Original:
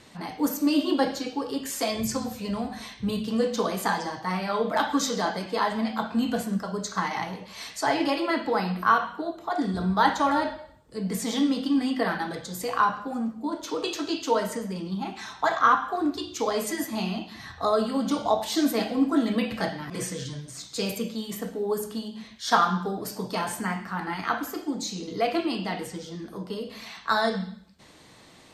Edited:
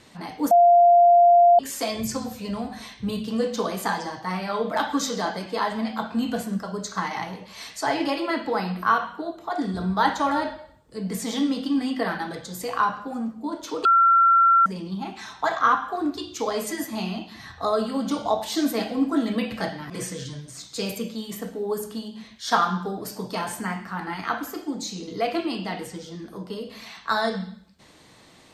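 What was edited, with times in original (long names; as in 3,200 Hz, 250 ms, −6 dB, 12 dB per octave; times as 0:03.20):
0:00.51–0:01.59: beep over 696 Hz −11 dBFS
0:13.85–0:14.66: beep over 1,360 Hz −13 dBFS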